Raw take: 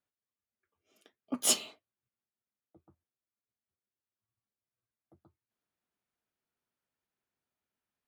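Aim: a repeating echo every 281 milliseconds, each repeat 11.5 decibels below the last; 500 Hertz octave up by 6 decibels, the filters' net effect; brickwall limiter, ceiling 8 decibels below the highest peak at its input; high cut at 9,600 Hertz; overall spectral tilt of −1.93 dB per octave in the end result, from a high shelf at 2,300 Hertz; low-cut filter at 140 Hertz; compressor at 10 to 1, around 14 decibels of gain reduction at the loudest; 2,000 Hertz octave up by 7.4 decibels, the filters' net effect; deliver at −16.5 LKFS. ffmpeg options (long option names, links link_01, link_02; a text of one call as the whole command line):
ffmpeg -i in.wav -af "highpass=140,lowpass=9600,equalizer=frequency=500:width_type=o:gain=7,equalizer=frequency=2000:width_type=o:gain=5,highshelf=frequency=2300:gain=7,acompressor=threshold=-30dB:ratio=10,alimiter=level_in=2dB:limit=-24dB:level=0:latency=1,volume=-2dB,aecho=1:1:281|562|843:0.266|0.0718|0.0194,volume=24.5dB" out.wav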